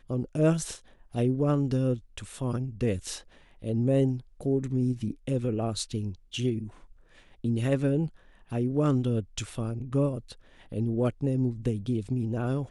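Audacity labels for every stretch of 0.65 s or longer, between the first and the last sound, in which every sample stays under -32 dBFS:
6.670000	7.440000	silence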